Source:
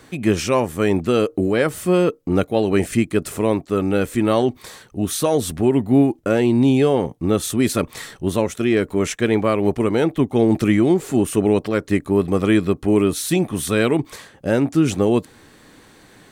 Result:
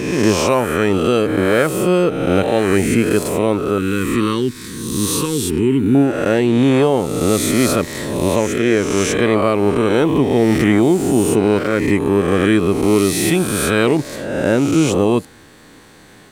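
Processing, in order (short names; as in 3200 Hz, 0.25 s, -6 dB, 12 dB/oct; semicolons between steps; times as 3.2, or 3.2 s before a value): spectral swells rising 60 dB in 1.37 s; 3.78–5.95 Butterworth band-stop 670 Hz, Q 0.9; gain +1 dB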